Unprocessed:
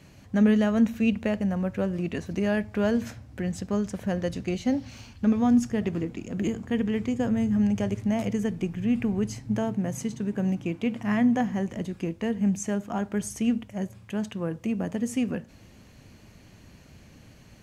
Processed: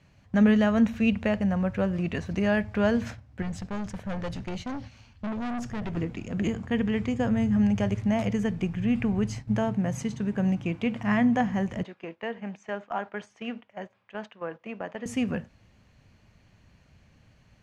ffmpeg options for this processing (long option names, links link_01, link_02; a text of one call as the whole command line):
ffmpeg -i in.wav -filter_complex "[0:a]asettb=1/sr,asplit=3[link_01][link_02][link_03];[link_01]atrim=end=3.424[link_04];[link_02]atrim=start=3.42:end=5.97,asetpts=PTS-STARTPTS,afade=type=in:duration=0.004:curve=qsin,afade=type=out:start_time=2.546:duration=0.004:curve=qsin,aeval=exprs='(tanh(31.6*val(0)+0.25)-tanh(0.25))/31.6':channel_layout=same[link_05];[link_03]atrim=start=5.966[link_06];[link_04][link_05]acrossfade=duration=0.004:curve1=hsin:curve2=qsin[link_07];[link_07][link_06]acrossfade=duration=0.004:curve1=qsin:curve2=hsin,asettb=1/sr,asplit=3[link_08][link_09][link_10];[link_08]atrim=end=11.834[link_11];[link_09]atrim=start=11.83:end=15.06,asetpts=PTS-STARTPTS,afade=type=in:duration=0.004:curve=qsin,afade=type=out:start_time=3.226:duration=0.004:curve=qsin,highpass=440,lowpass=3300[link_12];[link_10]atrim=start=15.056[link_13];[link_11][link_12]acrossfade=duration=0.004:curve1=hsin:curve2=qsin[link_14];[link_14][link_13]acrossfade=duration=0.004:curve1=qsin:curve2=hsin,aemphasis=mode=reproduction:type=50fm,agate=range=-10dB:threshold=-39dB:ratio=16:detection=peak,equalizer=frequency=320:width=0.92:gain=-7.5,volume=4.5dB" out.wav